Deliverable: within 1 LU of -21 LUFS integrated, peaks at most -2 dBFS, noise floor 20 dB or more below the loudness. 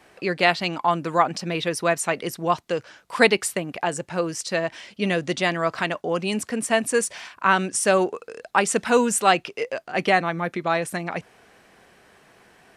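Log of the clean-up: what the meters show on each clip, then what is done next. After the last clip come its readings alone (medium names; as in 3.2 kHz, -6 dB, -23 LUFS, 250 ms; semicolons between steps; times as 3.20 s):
loudness -23.0 LUFS; peak level -2.0 dBFS; loudness target -21.0 LUFS
-> trim +2 dB; peak limiter -2 dBFS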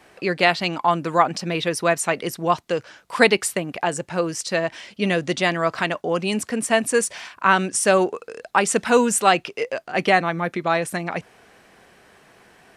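loudness -21.5 LUFS; peak level -2.0 dBFS; noise floor -56 dBFS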